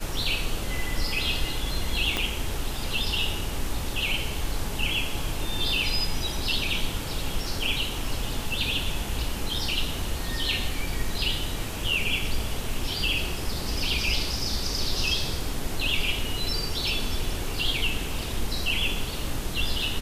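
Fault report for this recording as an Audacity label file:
2.170000	2.170000	pop -10 dBFS

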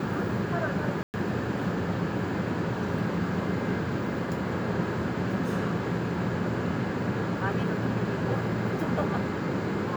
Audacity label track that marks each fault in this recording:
1.030000	1.140000	gap 0.109 s

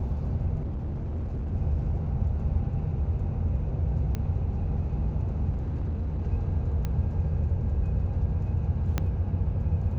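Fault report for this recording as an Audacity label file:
0.610000	1.530000	clipped -28.5 dBFS
4.150000	4.150000	pop -18 dBFS
5.500000	6.220000	clipped -26 dBFS
6.850000	6.850000	pop -18 dBFS
8.980000	8.980000	pop -13 dBFS

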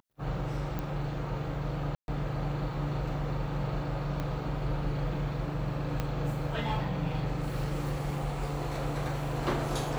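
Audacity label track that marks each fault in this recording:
0.790000	0.790000	pop -21 dBFS
1.950000	2.080000	gap 0.131 s
4.200000	4.200000	pop -21 dBFS
6.000000	6.000000	pop -17 dBFS

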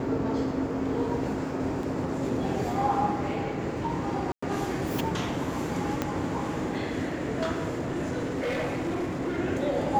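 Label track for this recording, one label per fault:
1.830000	1.830000	gap 2.4 ms
4.320000	4.420000	gap 0.105 s
6.020000	6.020000	pop -13 dBFS
7.730000	9.370000	clipped -26 dBFS

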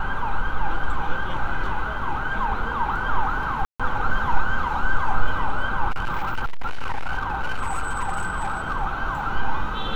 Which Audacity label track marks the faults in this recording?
3.650000	3.800000	gap 0.146 s
5.900000	8.730000	clipped -19 dBFS

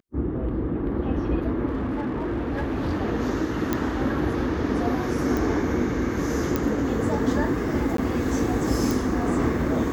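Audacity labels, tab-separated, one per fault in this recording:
1.670000	3.020000	clipped -22.5 dBFS
3.730000	3.730000	pop -9 dBFS
5.370000	5.370000	pop
6.560000	6.560000	pop -10 dBFS
7.970000	7.980000	gap 13 ms
8.910000	8.910000	pop

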